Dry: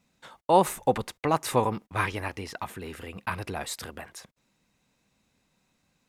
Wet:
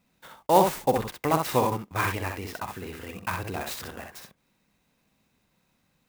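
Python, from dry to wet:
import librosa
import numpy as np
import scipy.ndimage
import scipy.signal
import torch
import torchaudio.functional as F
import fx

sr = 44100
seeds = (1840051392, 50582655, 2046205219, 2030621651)

y = fx.room_early_taps(x, sr, ms=(44, 63), db=(-13.5, -5.0))
y = fx.clock_jitter(y, sr, seeds[0], jitter_ms=0.03)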